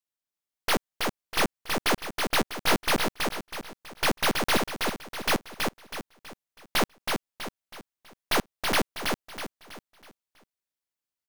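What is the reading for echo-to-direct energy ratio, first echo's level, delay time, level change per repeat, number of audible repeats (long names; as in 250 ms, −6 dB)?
−3.5 dB, −4.0 dB, 324 ms, −8.0 dB, 4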